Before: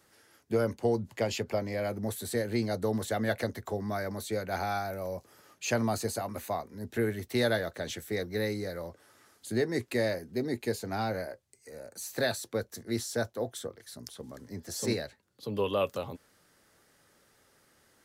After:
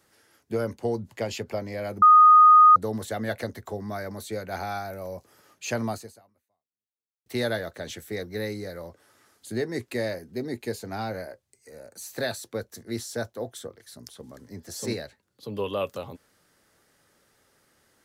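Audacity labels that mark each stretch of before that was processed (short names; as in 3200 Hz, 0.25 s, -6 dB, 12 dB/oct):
2.020000	2.760000	bleep 1240 Hz -10 dBFS
5.910000	7.260000	fade out exponential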